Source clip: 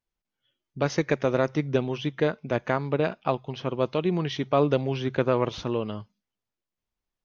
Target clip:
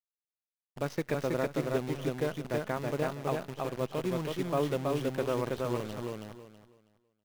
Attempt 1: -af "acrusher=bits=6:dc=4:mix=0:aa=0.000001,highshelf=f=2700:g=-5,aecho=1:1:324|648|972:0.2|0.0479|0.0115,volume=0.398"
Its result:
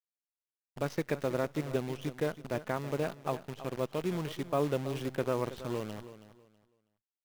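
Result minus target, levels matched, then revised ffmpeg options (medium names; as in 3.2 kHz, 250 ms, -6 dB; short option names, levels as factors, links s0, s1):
echo-to-direct -11.5 dB
-af "acrusher=bits=6:dc=4:mix=0:aa=0.000001,highshelf=f=2700:g=-5,aecho=1:1:324|648|972|1296:0.75|0.18|0.0432|0.0104,volume=0.398"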